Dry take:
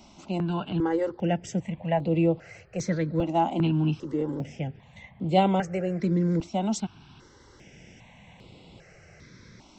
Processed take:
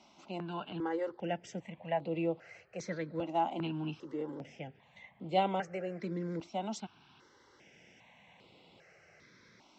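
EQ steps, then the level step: HPF 550 Hz 6 dB/oct; air absorption 95 m; -4.5 dB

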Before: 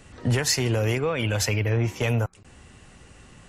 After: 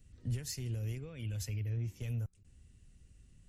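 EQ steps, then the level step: passive tone stack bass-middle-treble 10-0-1; high shelf 10000 Hz +11 dB; 0.0 dB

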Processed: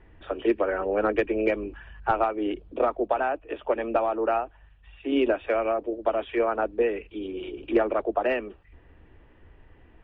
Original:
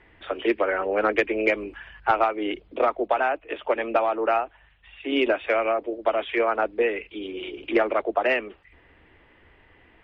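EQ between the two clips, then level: tilt -2.5 dB/oct; notch 2100 Hz, Q 9.3; -3.5 dB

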